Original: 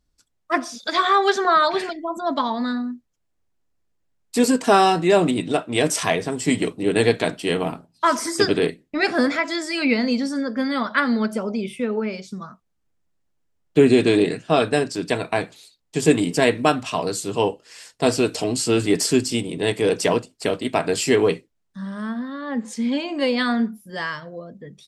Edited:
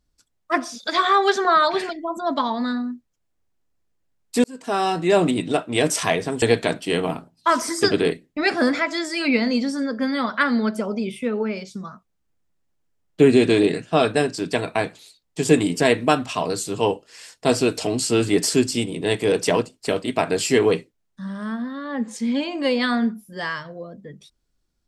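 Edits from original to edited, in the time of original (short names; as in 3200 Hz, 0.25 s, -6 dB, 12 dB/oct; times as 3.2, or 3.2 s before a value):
4.44–5.22 fade in
6.42–6.99 cut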